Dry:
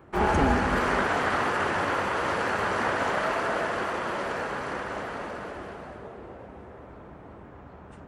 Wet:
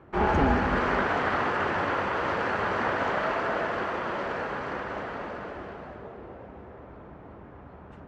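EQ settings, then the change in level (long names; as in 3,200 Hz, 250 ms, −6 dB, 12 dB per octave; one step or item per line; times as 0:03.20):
high-frequency loss of the air 140 metres
0.0 dB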